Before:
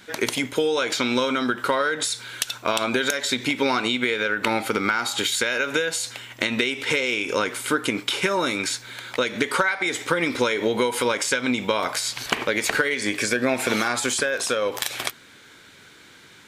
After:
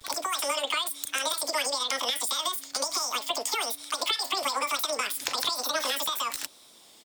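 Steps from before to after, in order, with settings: vibrato 0.47 Hz 65 cents; bands offset in time highs, lows 30 ms, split 360 Hz; speed mistake 33 rpm record played at 78 rpm; gain -5 dB

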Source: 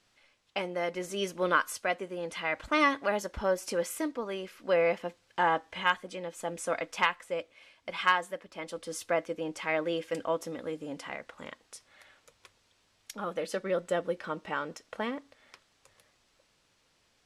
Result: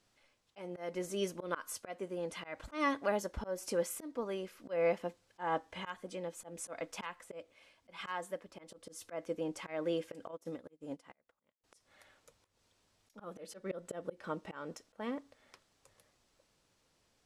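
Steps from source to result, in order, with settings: bell 2500 Hz -6 dB 2.5 oct; auto swell 0.185 s; 10.31–11.64 upward expander 2.5:1, over -55 dBFS; gain -1.5 dB

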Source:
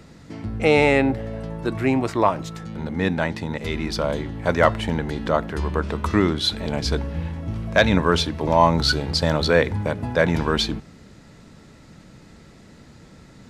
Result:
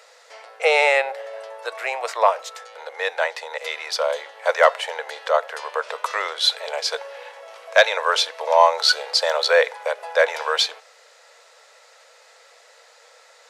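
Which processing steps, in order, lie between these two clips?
Chebyshev high-pass 480 Hz, order 6; bell 6400 Hz +2.5 dB 1.5 oct; gain +3 dB

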